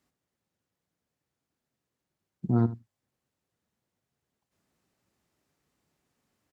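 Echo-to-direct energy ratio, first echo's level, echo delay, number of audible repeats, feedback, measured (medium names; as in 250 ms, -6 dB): -16.5 dB, -16.5 dB, 77 ms, 1, no regular repeats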